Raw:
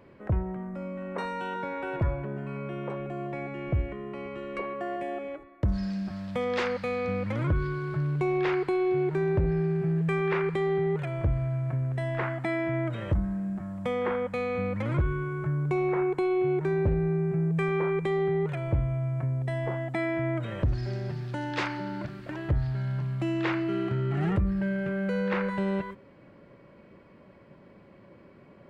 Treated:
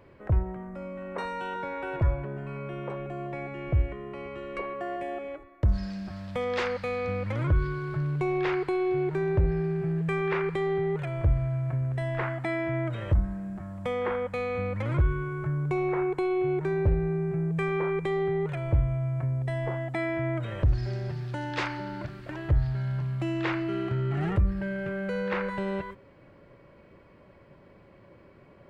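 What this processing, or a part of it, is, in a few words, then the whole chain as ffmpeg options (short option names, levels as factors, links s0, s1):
low shelf boost with a cut just above: -af "lowshelf=f=96:g=6.5,equalizer=f=210:t=o:w=0.94:g=-6"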